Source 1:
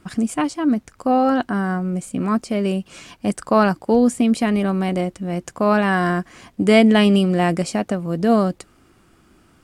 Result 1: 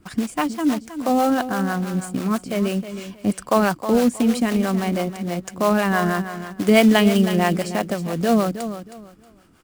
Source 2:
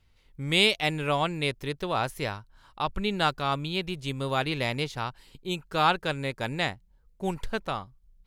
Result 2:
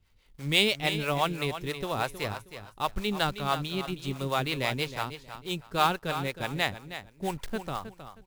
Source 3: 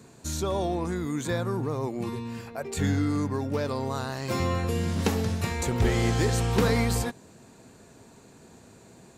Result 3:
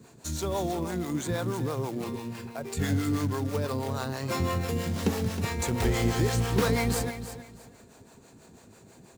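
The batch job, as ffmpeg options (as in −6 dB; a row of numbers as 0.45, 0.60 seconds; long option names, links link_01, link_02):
-filter_complex "[0:a]aecho=1:1:316|632|948:0.282|0.0705|0.0176,acrusher=bits=4:mode=log:mix=0:aa=0.000001,acrossover=split=430[link_01][link_02];[link_01]aeval=exprs='val(0)*(1-0.7/2+0.7/2*cos(2*PI*6.1*n/s))':channel_layout=same[link_03];[link_02]aeval=exprs='val(0)*(1-0.7/2-0.7/2*cos(2*PI*6.1*n/s))':channel_layout=same[link_04];[link_03][link_04]amix=inputs=2:normalize=0,volume=1.5dB"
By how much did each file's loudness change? −1.5, −1.5, −1.5 LU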